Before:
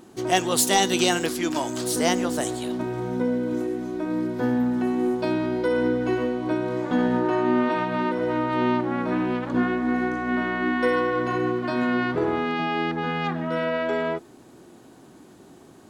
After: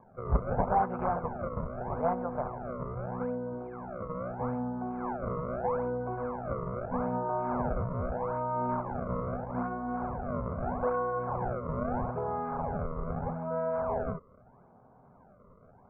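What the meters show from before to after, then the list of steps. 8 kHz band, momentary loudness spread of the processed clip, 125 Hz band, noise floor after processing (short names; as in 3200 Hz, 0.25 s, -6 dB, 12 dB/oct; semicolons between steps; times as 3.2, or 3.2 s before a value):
n/a, 6 LU, -2.0 dB, -59 dBFS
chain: decimation with a swept rate 31×, swing 160% 0.79 Hz; steep low-pass 2000 Hz 72 dB/oct; fixed phaser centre 780 Hz, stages 4; gain -3 dB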